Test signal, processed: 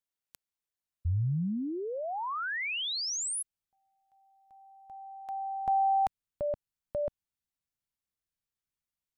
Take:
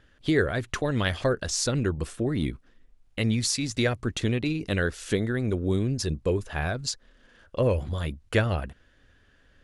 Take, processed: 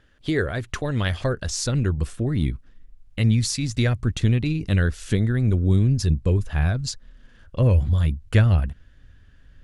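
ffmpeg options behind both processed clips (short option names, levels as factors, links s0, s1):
-af "asubboost=boost=4:cutoff=200"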